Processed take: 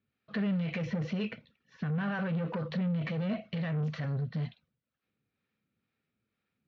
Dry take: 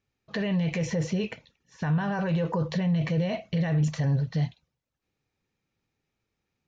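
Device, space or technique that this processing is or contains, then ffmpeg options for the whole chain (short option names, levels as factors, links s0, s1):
guitar amplifier with harmonic tremolo: -filter_complex "[0:a]acrossover=split=470[s0][s1];[s0]aeval=exprs='val(0)*(1-0.5/2+0.5/2*cos(2*PI*2.1*n/s))':c=same[s2];[s1]aeval=exprs='val(0)*(1-0.5/2-0.5/2*cos(2*PI*2.1*n/s))':c=same[s3];[s2][s3]amix=inputs=2:normalize=0,asoftclip=type=tanh:threshold=0.0355,highpass=88,equalizer=f=220:t=q:w=4:g=7,equalizer=f=360:t=q:w=4:g=-3,equalizer=f=870:t=q:w=4:g=-8,equalizer=f=1400:t=q:w=4:g=5,lowpass=f=4100:w=0.5412,lowpass=f=4100:w=1.3066"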